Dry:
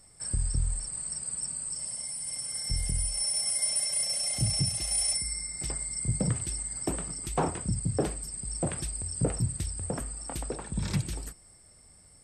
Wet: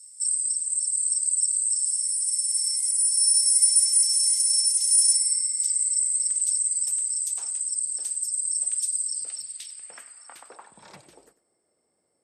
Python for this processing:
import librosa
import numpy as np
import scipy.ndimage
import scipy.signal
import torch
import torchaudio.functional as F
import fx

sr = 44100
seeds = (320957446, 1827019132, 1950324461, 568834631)

y = fx.filter_sweep_bandpass(x, sr, from_hz=7300.0, to_hz=390.0, start_s=8.92, end_s=11.43, q=1.6)
y = fx.riaa(y, sr, side='recording')
y = y + 10.0 ** (-16.5 / 20.0) * np.pad(y, (int(97 * sr / 1000.0), 0))[:len(y)]